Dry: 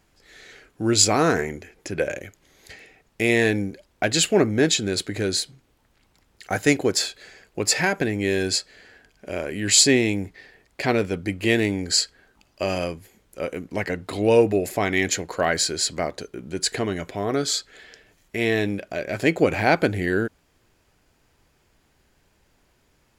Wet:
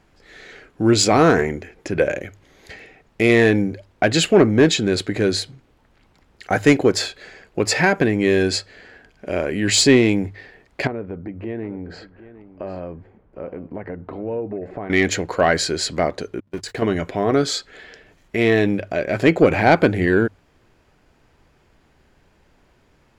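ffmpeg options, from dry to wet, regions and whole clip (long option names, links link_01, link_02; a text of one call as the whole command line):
ffmpeg -i in.wav -filter_complex "[0:a]asettb=1/sr,asplit=3[link_01][link_02][link_03];[link_01]atrim=end=10.874[link_04];[link_02]atrim=start=10.87:end=14.9,asetpts=PTS-STARTPTS,afade=type=in:duration=0.004:curve=qsin,afade=type=out:start_time=4.026:duration=0.004:curve=qsin,lowpass=1200,acompressor=threshold=-38dB:ratio=2.5:attack=3.2:release=140:knee=1:detection=peak,aecho=1:1:756:0.168,atrim=end_sample=177723[link_05];[link_03]atrim=start=14.896[link_06];[link_04][link_05]acrossfade=duration=0.004:curve1=hsin:curve2=qsin[link_07];[link_07][link_06]acrossfade=duration=0.004:curve1=qsin:curve2=hsin,asettb=1/sr,asplit=3[link_08][link_09][link_10];[link_08]atrim=end=16.404[link_11];[link_09]atrim=start=16.4:end=16.82,asetpts=PTS-STARTPTS,afade=type=in:duration=0.004:curve=qsin,afade=type=out:start_time=0.416:duration=0.004:curve=qsin,aeval=exprs='val(0)+0.5*0.0299*sgn(val(0))':channel_layout=same,agate=range=-49dB:threshold=-28dB:ratio=16:release=100:detection=peak,acompressor=threshold=-33dB:ratio=2.5:attack=3.2:release=140:knee=1:detection=peak[link_12];[link_10]atrim=start=16.816[link_13];[link_11][link_12]acrossfade=duration=0.004:curve1=hsin:curve2=qsin[link_14];[link_14][link_13]acrossfade=duration=0.004:curve1=qsin:curve2=hsin,lowpass=frequency=2400:poles=1,bandreject=frequency=50:width_type=h:width=6,bandreject=frequency=100:width_type=h:width=6,acontrast=77" out.wav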